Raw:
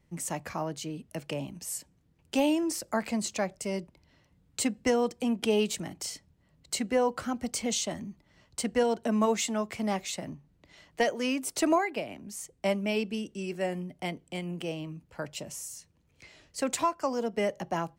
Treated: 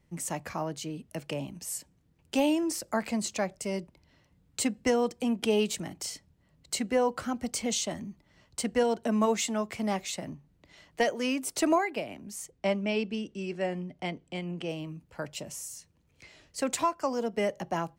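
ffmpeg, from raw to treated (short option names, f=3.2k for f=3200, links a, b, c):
-filter_complex "[0:a]asplit=3[a][b][c];[a]afade=t=out:st=12.5:d=0.02[d];[b]lowpass=5.6k,afade=t=in:st=12.5:d=0.02,afade=t=out:st=14.68:d=0.02[e];[c]afade=t=in:st=14.68:d=0.02[f];[d][e][f]amix=inputs=3:normalize=0"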